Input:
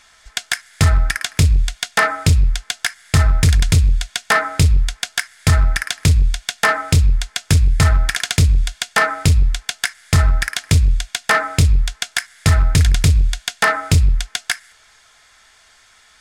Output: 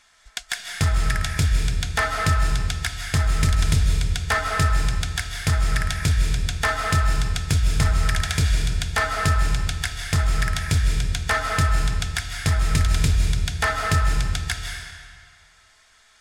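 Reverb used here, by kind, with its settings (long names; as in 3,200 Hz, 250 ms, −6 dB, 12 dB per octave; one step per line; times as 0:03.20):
comb and all-pass reverb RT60 1.8 s, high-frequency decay 0.9×, pre-delay 115 ms, DRR 1.5 dB
level −7.5 dB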